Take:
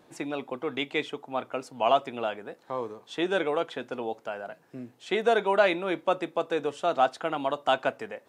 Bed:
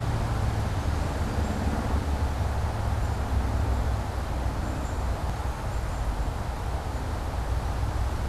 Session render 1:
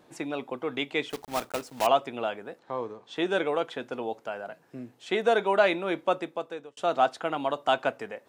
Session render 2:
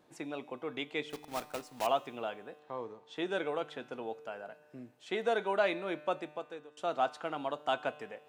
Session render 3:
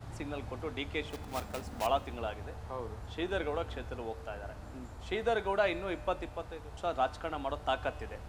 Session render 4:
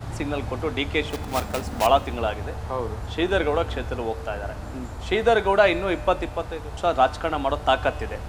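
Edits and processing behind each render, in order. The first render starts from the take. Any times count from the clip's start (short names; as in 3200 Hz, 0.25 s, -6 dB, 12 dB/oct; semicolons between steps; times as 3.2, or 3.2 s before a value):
1.1–1.87 block floating point 3-bit; 2.59–3.16 air absorption 67 m; 6.11–6.77 fade out
resonator 150 Hz, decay 1.6 s, mix 60%
add bed -17.5 dB
gain +12 dB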